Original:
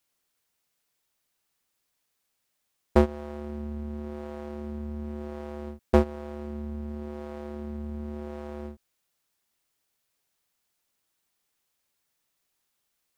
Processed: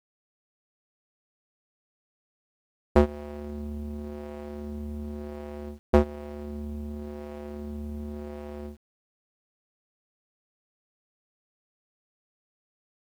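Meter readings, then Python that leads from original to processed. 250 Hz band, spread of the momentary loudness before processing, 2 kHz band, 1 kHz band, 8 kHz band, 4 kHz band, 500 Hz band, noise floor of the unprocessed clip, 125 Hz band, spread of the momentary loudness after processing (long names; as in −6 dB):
0.0 dB, 14 LU, −0.5 dB, −0.5 dB, can't be measured, −0.5 dB, 0.0 dB, −78 dBFS, 0.0 dB, 15 LU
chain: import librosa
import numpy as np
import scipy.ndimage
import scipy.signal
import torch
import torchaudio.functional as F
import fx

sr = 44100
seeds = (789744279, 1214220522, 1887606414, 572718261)

y = fx.wiener(x, sr, points=25)
y = fx.quant_dither(y, sr, seeds[0], bits=10, dither='none')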